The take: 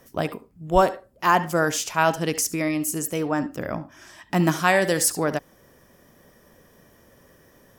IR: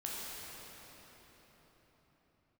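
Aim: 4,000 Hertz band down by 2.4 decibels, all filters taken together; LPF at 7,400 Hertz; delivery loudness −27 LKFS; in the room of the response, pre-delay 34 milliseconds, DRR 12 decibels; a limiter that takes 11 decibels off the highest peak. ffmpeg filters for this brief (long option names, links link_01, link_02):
-filter_complex "[0:a]lowpass=7400,equalizer=frequency=4000:width_type=o:gain=-3,alimiter=limit=-16.5dB:level=0:latency=1,asplit=2[link_01][link_02];[1:a]atrim=start_sample=2205,adelay=34[link_03];[link_02][link_03]afir=irnorm=-1:irlink=0,volume=-14.5dB[link_04];[link_01][link_04]amix=inputs=2:normalize=0,volume=0.5dB"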